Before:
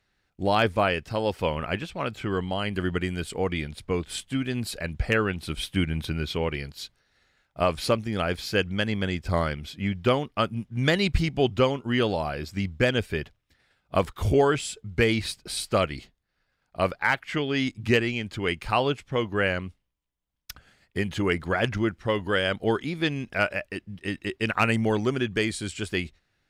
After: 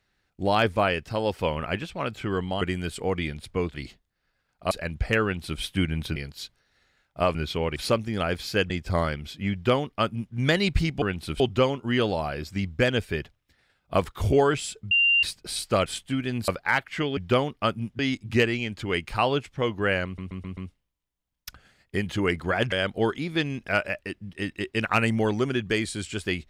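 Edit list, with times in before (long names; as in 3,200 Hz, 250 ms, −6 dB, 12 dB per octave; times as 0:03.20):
0:02.61–0:02.95: remove
0:04.08–0:04.70: swap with 0:15.87–0:16.84
0:05.22–0:05.60: duplicate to 0:11.41
0:06.15–0:06.56: move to 0:07.75
0:08.69–0:09.09: remove
0:09.92–0:10.74: duplicate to 0:17.53
0:14.92–0:15.24: beep over 2,780 Hz −17 dBFS
0:19.59: stutter 0.13 s, 5 plays
0:21.74–0:22.38: remove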